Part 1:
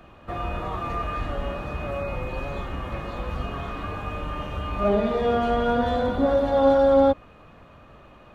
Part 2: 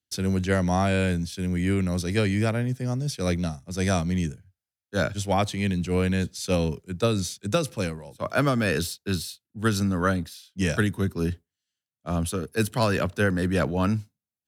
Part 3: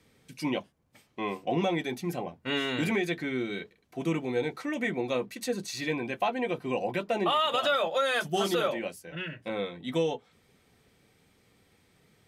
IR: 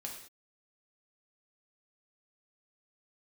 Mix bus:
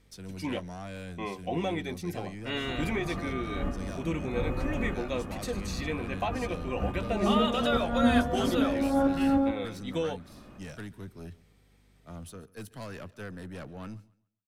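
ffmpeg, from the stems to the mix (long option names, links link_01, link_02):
-filter_complex "[0:a]equalizer=frequency=250:width_type=o:width=1:gain=8,equalizer=frequency=500:width_type=o:width=1:gain=-4,equalizer=frequency=1000:width_type=o:width=1:gain=-4,equalizer=frequency=4000:width_type=o:width=1:gain=-11,adelay=2250,volume=-2dB,asplit=2[link_01][link_02];[link_02]volume=-7dB[link_03];[1:a]aeval=exprs='(tanh(11.2*val(0)+0.3)-tanh(0.3))/11.2':channel_layout=same,volume=-14.5dB,asplit=3[link_04][link_05][link_06];[link_05]volume=-21.5dB[link_07];[2:a]aeval=exprs='val(0)+0.00112*(sin(2*PI*50*n/s)+sin(2*PI*2*50*n/s)/2+sin(2*PI*3*50*n/s)/3+sin(2*PI*4*50*n/s)/4+sin(2*PI*5*50*n/s)/5)':channel_layout=same,volume=-3.5dB[link_08];[link_06]apad=whole_len=467434[link_09];[link_01][link_09]sidechaincompress=threshold=-55dB:ratio=8:attack=16:release=105[link_10];[link_03][link_07]amix=inputs=2:normalize=0,aecho=0:1:138|276|414|552:1|0.24|0.0576|0.0138[link_11];[link_10][link_04][link_08][link_11]amix=inputs=4:normalize=0"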